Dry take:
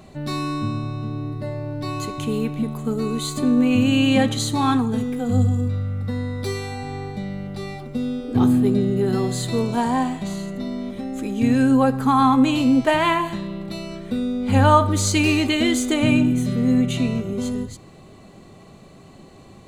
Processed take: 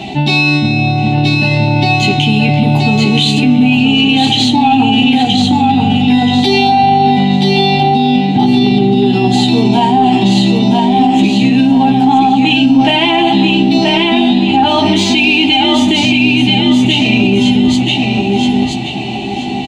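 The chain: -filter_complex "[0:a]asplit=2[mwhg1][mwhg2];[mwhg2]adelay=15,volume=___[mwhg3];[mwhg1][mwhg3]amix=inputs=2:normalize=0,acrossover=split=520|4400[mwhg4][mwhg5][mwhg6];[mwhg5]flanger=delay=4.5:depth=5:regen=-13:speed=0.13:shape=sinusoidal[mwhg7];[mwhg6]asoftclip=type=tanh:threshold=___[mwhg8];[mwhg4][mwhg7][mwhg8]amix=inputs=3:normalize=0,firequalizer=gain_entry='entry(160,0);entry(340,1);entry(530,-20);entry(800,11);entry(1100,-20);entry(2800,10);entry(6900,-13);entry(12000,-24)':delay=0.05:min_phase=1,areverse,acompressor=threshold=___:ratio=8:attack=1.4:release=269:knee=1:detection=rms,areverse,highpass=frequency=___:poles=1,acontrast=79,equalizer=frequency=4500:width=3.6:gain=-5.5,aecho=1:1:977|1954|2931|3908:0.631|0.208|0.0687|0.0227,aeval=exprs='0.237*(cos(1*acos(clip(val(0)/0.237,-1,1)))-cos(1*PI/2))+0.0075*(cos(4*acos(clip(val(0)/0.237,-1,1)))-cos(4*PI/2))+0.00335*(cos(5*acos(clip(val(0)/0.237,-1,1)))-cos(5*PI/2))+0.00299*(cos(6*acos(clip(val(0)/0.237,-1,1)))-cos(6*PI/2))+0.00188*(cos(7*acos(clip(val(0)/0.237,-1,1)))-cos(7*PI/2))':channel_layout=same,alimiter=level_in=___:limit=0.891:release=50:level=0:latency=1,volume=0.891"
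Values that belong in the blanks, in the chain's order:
0.668, 0.0355, 0.0562, 400, 11.2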